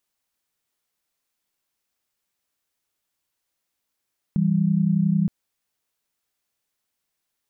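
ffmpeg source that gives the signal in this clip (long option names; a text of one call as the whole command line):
ffmpeg -f lavfi -i "aevalsrc='0.1*(sin(2*PI*164.81*t)+sin(2*PI*196*t))':duration=0.92:sample_rate=44100" out.wav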